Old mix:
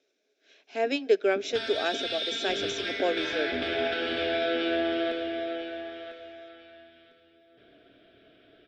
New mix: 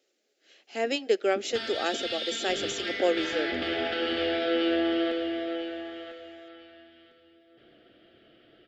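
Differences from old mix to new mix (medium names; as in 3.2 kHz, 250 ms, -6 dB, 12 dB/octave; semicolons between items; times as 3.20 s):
speech: remove distance through air 69 m; master: remove rippled EQ curve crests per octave 1.6, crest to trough 8 dB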